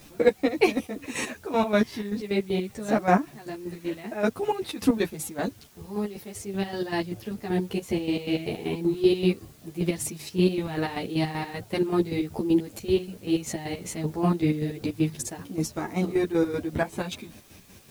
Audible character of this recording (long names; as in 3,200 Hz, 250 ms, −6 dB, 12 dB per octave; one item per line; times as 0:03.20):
chopped level 5.2 Hz, depth 65%, duty 45%
a quantiser's noise floor 10 bits, dither triangular
a shimmering, thickened sound